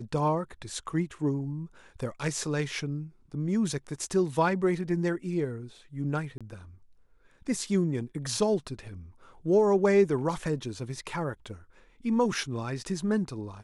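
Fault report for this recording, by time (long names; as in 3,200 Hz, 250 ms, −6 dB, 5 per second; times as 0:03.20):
0:06.38–0:06.41: drop-out 26 ms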